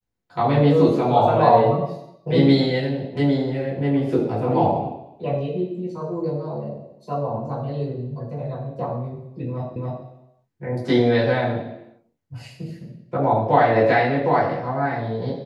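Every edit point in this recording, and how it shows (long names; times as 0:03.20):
0:09.76: the same again, the last 0.28 s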